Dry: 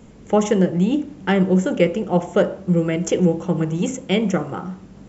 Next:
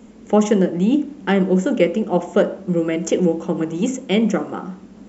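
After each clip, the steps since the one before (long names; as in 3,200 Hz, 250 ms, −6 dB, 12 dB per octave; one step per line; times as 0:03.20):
low shelf with overshoot 180 Hz −6 dB, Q 3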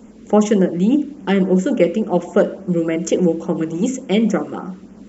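auto-filter notch sine 3.5 Hz 740–4,300 Hz
level +1.5 dB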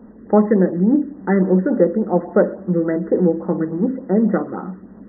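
linear-phase brick-wall low-pass 2,000 Hz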